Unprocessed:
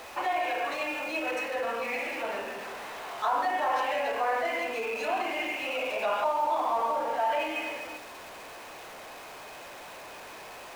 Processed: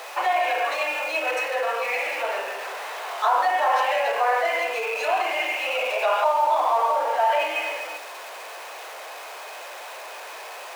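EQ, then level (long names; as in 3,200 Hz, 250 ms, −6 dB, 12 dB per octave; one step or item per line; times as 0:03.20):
high-pass filter 460 Hz 24 dB per octave
+7.0 dB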